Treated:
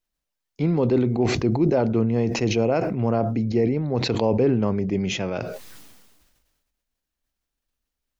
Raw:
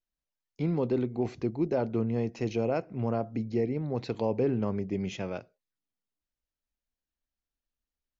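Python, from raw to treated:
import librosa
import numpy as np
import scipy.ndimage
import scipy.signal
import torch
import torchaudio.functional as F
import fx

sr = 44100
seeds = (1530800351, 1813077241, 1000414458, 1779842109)

y = fx.sustainer(x, sr, db_per_s=38.0)
y = F.gain(torch.from_numpy(y), 7.0).numpy()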